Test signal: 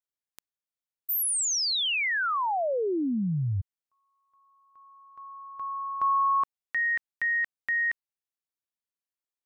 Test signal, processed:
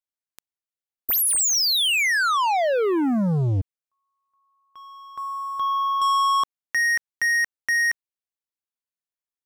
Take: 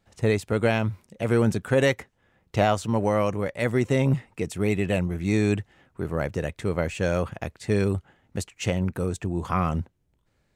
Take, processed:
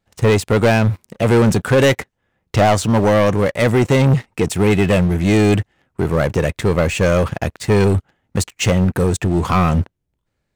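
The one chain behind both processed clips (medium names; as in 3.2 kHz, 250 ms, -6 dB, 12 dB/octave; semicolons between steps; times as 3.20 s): waveshaping leveller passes 3; trim +2 dB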